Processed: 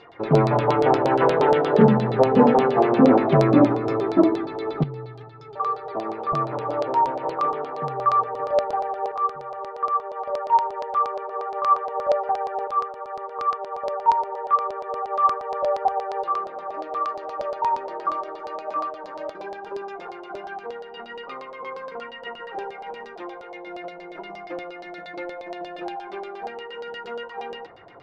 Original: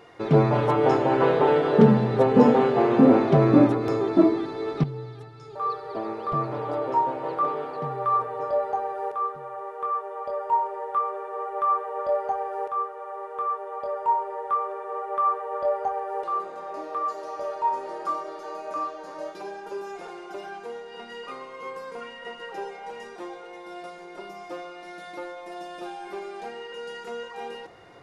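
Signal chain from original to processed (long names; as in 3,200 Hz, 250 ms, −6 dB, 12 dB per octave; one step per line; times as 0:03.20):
0:23.53–0:25.96: comb filter 6.1 ms, depth 61%
auto-filter low-pass saw down 8.5 Hz 600–4,700 Hz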